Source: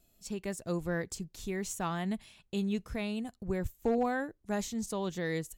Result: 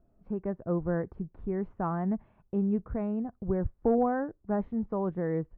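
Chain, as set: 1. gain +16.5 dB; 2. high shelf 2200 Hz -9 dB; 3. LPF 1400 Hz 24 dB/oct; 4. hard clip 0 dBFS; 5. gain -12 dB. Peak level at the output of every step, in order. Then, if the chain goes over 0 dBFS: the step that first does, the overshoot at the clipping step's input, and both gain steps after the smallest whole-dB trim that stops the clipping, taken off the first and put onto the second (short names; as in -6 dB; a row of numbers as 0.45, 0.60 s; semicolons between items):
-4.5, -4.5, -4.5, -4.5, -16.5 dBFS; no overload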